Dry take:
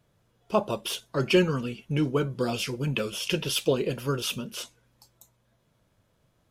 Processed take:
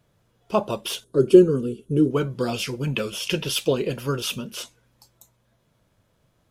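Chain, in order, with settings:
0:01.04–0:02.11: drawn EQ curve 200 Hz 0 dB, 420 Hz +10 dB, 770 Hz −16 dB, 1,400 Hz −8 dB, 2,100 Hz −23 dB, 3,400 Hz −8 dB, 5,300 Hz −12 dB, 10,000 Hz +6 dB, 15,000 Hz −18 dB
level +2.5 dB

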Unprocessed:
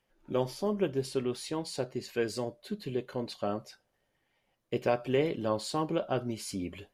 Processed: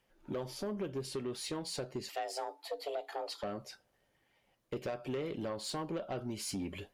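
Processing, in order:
downward compressor 5 to 1, threshold −34 dBFS, peak gain reduction 11.5 dB
soft clipping −32.5 dBFS, distortion −13 dB
0:02.09–0:03.43: frequency shifter +280 Hz
harmonic generator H 4 −41 dB, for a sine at −28 dBFS
level +2 dB

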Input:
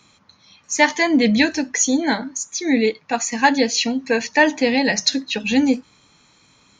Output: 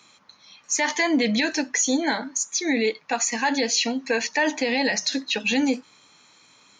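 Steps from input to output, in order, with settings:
high-pass filter 440 Hz 6 dB per octave
brickwall limiter −13.5 dBFS, peak gain reduction 11 dB
level +1 dB

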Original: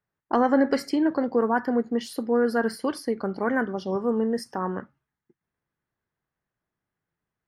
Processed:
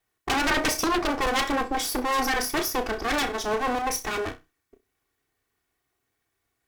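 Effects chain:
lower of the sound and its delayed copy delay 3 ms
high-shelf EQ 3,400 Hz +8 dB
flutter between parallel walls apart 6.1 metres, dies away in 0.24 s
harmonic generator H 3 −12 dB, 7 −9 dB, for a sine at −9.5 dBFS
speed change +12%

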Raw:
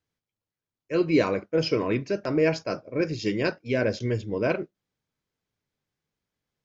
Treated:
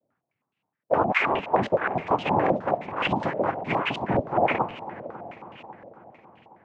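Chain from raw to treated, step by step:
time-frequency cells dropped at random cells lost 25%
hum removal 416.3 Hz, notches 37
in parallel at +1 dB: downward compressor, threshold −40 dBFS, peak gain reduction 20 dB
on the sum: brickwall limiter −20 dBFS, peak gain reduction 9.5 dB
cochlear-implant simulation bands 4
on a send: echo machine with several playback heads 273 ms, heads first and second, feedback 60%, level −17.5 dB
on the sum: regular buffer underruns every 0.56 s, samples 2,048, repeat, from 0:00.74
low-pass on a step sequencer 9.6 Hz 580–2,800 Hz
level +2 dB

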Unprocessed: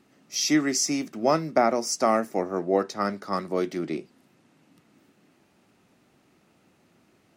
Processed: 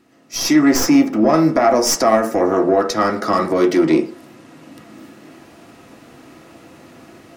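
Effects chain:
stylus tracing distortion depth 0.033 ms
0:00.59–0:01.34: parametric band 9,000 Hz −9 dB 2.8 octaves
in parallel at −1 dB: downward compressor, threshold −32 dBFS, peak gain reduction 15.5 dB
on the sum: brickwall limiter −17 dBFS, peak gain reduction 11 dB
automatic gain control gain up to 14 dB
soft clipping −5.5 dBFS, distortion −20 dB
on a send at −1.5 dB: convolution reverb RT60 0.45 s, pre-delay 3 ms
on the sum: level −2 dB

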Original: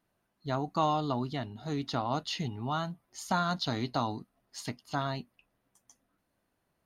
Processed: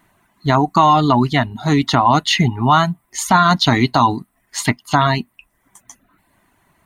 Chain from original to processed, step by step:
reverb reduction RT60 0.61 s
thirty-one-band graphic EQ 500 Hz −11 dB, 1,000 Hz +6 dB, 2,000 Hz +7 dB, 5,000 Hz −8 dB, 8,000 Hz +4 dB
boost into a limiter +21 dB
level −1 dB

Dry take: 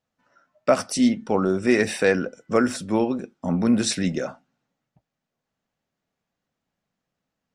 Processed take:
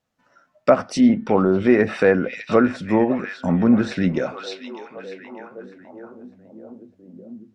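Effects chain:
echo through a band-pass that steps 603 ms, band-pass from 3,000 Hz, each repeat −0.7 octaves, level −8 dB
0:00.94–0:01.63: transient designer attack 0 dB, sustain +4 dB
treble cut that deepens with the level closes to 1,700 Hz, closed at −18 dBFS
level +4 dB

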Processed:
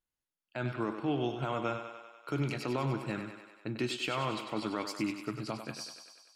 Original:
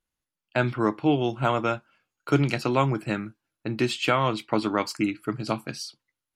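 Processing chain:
brickwall limiter −15.5 dBFS, peak gain reduction 7.5 dB
on a send: feedback echo with a high-pass in the loop 97 ms, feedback 68%, high-pass 300 Hz, level −7.5 dB
on the sum: level −7.5 dB

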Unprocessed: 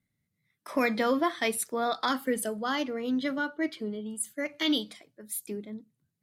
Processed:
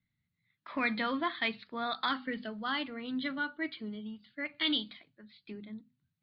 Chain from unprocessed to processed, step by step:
Butterworth low-pass 4,500 Hz 96 dB per octave
parametric band 480 Hz −12.5 dB 1.5 octaves
mains-hum notches 50/100/150/200/250 Hz

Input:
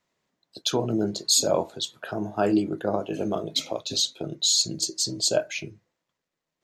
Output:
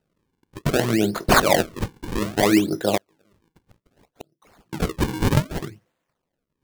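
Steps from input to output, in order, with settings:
sample-and-hold swept by an LFO 39×, swing 160% 0.63 Hz
0:02.97–0:04.73: gate with flip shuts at −28 dBFS, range −39 dB
level +5 dB

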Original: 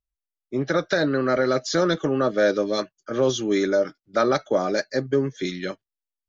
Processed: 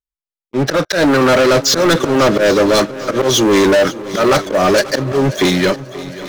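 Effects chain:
volume swells 168 ms
leveller curve on the samples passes 5
echo machine with several playback heads 268 ms, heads second and third, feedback 43%, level −17 dB
level +2 dB

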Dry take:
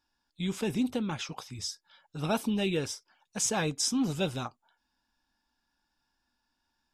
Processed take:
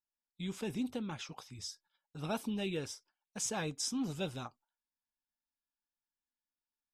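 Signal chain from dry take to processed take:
noise gate −55 dBFS, range −17 dB
level −7.5 dB

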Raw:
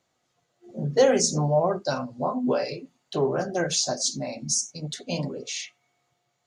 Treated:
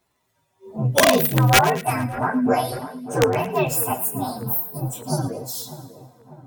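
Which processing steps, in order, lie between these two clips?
partials spread apart or drawn together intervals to 128%
wrap-around overflow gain 15.5 dB
echo with a time of its own for lows and highs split 1,600 Hz, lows 596 ms, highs 112 ms, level −14.5 dB
level +8 dB

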